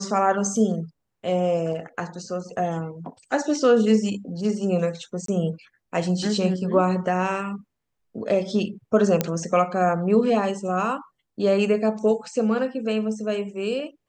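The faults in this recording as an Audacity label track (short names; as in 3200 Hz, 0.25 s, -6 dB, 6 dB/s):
5.260000	5.280000	gap 23 ms
9.210000	9.210000	pop -6 dBFS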